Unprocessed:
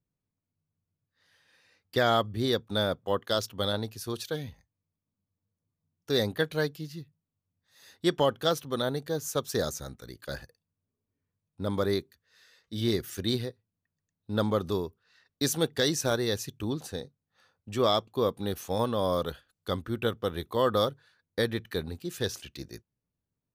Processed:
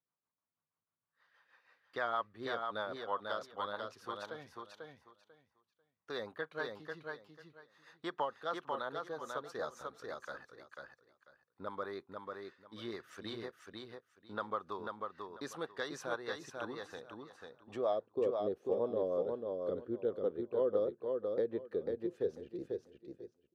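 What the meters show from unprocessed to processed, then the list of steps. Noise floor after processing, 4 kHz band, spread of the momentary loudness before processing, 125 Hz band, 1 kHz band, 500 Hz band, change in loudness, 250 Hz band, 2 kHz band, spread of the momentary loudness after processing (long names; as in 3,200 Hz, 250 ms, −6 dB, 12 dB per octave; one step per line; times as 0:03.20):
below −85 dBFS, −17.5 dB, 14 LU, −21.0 dB, −7.0 dB, −7.0 dB, −9.5 dB, −12.5 dB, −7.5 dB, 17 LU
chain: band-pass filter sweep 1,100 Hz → 450 Hz, 0:17.47–0:18.16
rotating-speaker cabinet horn 6.3 Hz
downward compressor 1.5 to 1, threshold −56 dBFS, peak gain reduction 11 dB
repeating echo 493 ms, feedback 20%, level −4 dB
level +8 dB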